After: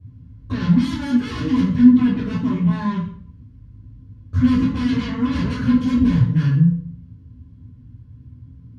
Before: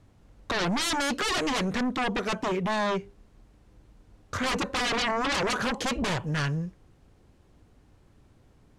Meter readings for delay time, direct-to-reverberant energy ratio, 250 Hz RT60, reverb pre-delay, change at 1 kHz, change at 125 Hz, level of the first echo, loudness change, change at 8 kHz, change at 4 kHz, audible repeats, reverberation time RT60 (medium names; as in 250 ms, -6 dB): no echo, -10.5 dB, 0.60 s, 3 ms, -4.5 dB, +15.5 dB, no echo, +9.5 dB, under -10 dB, -6.0 dB, no echo, 0.50 s